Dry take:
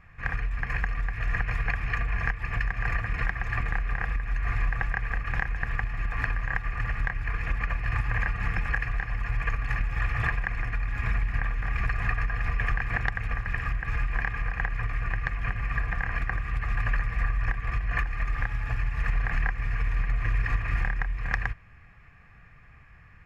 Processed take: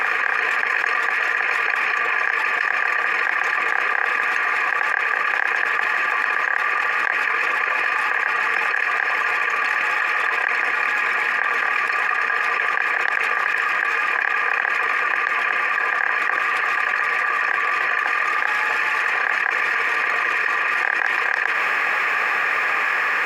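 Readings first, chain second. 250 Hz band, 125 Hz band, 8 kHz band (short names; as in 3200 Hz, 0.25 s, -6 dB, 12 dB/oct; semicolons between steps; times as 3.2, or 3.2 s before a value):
-1.5 dB, under -25 dB, n/a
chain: HPF 420 Hz 24 dB/oct; notch 680 Hz, Q 12; reverse echo 0.276 s -16.5 dB; fast leveller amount 100%; gain +5 dB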